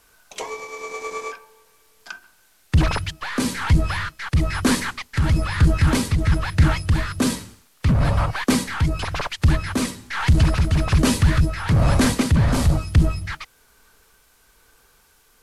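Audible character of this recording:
tremolo triangle 1.1 Hz, depth 45%
a quantiser's noise floor 10 bits, dither triangular
SBC

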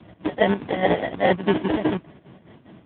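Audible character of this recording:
a buzz of ramps at a fixed pitch in blocks of 8 samples
chopped level 4.9 Hz, depth 60%, duty 65%
aliases and images of a low sample rate 1,300 Hz, jitter 0%
AMR narrowband

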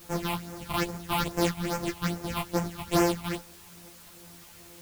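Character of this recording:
a buzz of ramps at a fixed pitch in blocks of 256 samples
phaser sweep stages 6, 2.4 Hz, lowest notch 420–3,800 Hz
a quantiser's noise floor 8 bits, dither triangular
a shimmering, thickened sound

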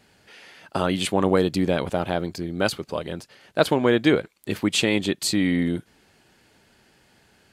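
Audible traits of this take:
background noise floor −60 dBFS
spectral slope −5.0 dB per octave

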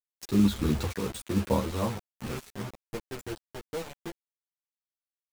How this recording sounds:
sample-and-hold tremolo 4.4 Hz, depth 85%
a quantiser's noise floor 6 bits, dither none
a shimmering, thickened sound

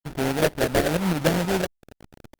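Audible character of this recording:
a quantiser's noise floor 6 bits, dither none
tremolo saw up 6.2 Hz, depth 50%
aliases and images of a low sample rate 1,100 Hz, jitter 20%
Opus

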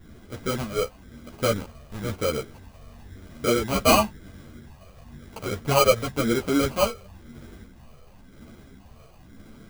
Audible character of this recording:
phaser sweep stages 6, 0.97 Hz, lowest notch 270–1,700 Hz
aliases and images of a low sample rate 1,800 Hz, jitter 0%
a shimmering, thickened sound

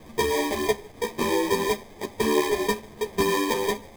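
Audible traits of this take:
a quantiser's noise floor 8 bits, dither triangular
phaser sweep stages 6, 3 Hz, lowest notch 670–1,400 Hz
aliases and images of a low sample rate 1,400 Hz, jitter 0%
a shimmering, thickened sound

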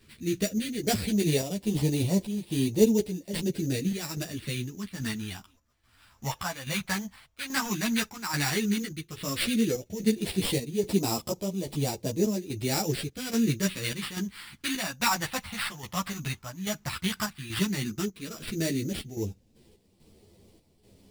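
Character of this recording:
aliases and images of a low sample rate 6,400 Hz, jitter 0%
phaser sweep stages 2, 0.11 Hz, lowest notch 390–1,400 Hz
chopped level 1.2 Hz, depth 60%, duty 70%
a shimmering, thickened sound

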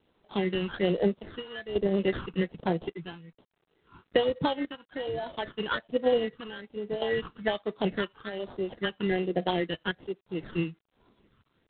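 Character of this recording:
aliases and images of a low sample rate 2,400 Hz, jitter 0%
phaser sweep stages 12, 1.2 Hz, lowest notch 610–2,400 Hz
chopped level 0.57 Hz, depth 65%, duty 65%
G.726

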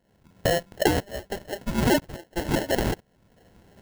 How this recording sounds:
phaser sweep stages 4, 2.7 Hz, lowest notch 710–2,200 Hz
tremolo saw up 1 Hz, depth 90%
aliases and images of a low sample rate 1,200 Hz, jitter 0%

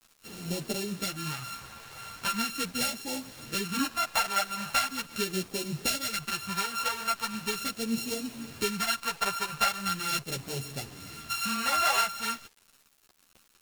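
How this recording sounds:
a buzz of ramps at a fixed pitch in blocks of 32 samples
phaser sweep stages 2, 0.4 Hz, lowest notch 280–1,200 Hz
a quantiser's noise floor 8 bits, dither none
a shimmering, thickened sound

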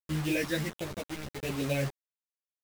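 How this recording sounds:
phaser sweep stages 6, 1.4 Hz, lowest notch 770–1,600 Hz
sample-and-hold tremolo
a quantiser's noise floor 6 bits, dither none
a shimmering, thickened sound

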